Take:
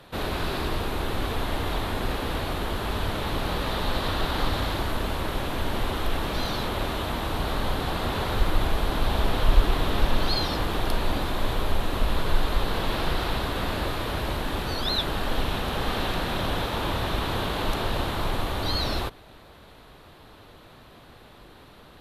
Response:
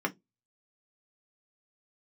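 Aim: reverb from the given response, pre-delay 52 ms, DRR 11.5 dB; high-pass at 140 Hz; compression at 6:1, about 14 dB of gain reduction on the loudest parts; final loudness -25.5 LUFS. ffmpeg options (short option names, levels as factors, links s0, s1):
-filter_complex "[0:a]highpass=140,acompressor=threshold=0.0112:ratio=6,asplit=2[s0][s1];[1:a]atrim=start_sample=2205,adelay=52[s2];[s1][s2]afir=irnorm=-1:irlink=0,volume=0.112[s3];[s0][s3]amix=inputs=2:normalize=0,volume=5.96"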